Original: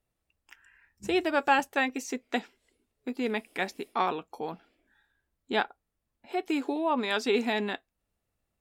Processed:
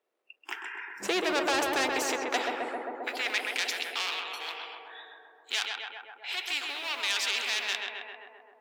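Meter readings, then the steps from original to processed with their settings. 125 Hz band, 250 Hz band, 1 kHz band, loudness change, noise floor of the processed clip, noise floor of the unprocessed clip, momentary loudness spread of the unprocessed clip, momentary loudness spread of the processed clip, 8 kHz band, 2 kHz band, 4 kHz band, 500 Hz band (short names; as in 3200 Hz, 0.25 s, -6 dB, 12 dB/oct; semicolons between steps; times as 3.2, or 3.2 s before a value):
under -10 dB, -7.5 dB, -3.5 dB, -0.5 dB, -62 dBFS, -83 dBFS, 14 LU, 14 LU, +9.5 dB, +2.5 dB, +8.0 dB, -3.5 dB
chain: G.711 law mismatch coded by mu; in parallel at +2 dB: limiter -20 dBFS, peak gain reduction 9.5 dB; on the sum: tone controls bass -11 dB, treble -12 dB; spectral noise reduction 25 dB; soft clip -17 dBFS, distortion -14 dB; high-pass sweep 390 Hz -> 2900 Hz, 1.81–3.59; on a send: tape echo 0.131 s, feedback 85%, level -3 dB, low-pass 1400 Hz; on the sum: spectral compressor 2:1; gain -3.5 dB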